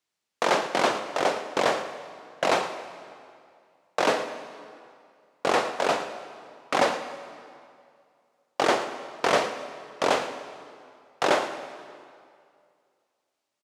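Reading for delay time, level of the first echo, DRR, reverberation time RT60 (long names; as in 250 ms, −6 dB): 113 ms, −15.0 dB, 8.5 dB, 2.3 s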